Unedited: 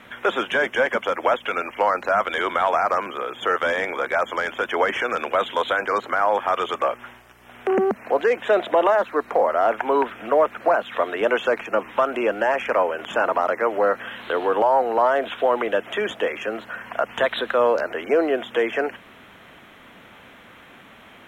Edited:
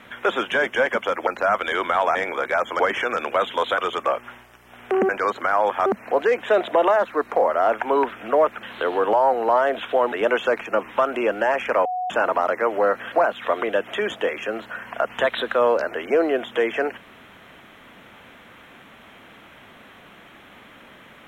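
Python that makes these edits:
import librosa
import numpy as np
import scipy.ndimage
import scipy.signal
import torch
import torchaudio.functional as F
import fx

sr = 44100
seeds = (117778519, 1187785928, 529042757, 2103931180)

y = fx.edit(x, sr, fx.cut(start_s=1.27, length_s=0.66),
    fx.cut(start_s=2.81, length_s=0.95),
    fx.cut(start_s=4.41, length_s=0.38),
    fx.move(start_s=5.77, length_s=0.77, to_s=7.85),
    fx.swap(start_s=10.62, length_s=0.5, other_s=14.12, other_length_s=1.49),
    fx.bleep(start_s=12.85, length_s=0.25, hz=733.0, db=-23.0), tone=tone)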